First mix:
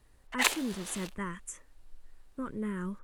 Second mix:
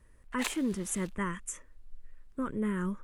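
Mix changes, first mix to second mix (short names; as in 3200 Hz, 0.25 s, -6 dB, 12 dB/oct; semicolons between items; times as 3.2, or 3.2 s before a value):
speech +3.5 dB; background -9.5 dB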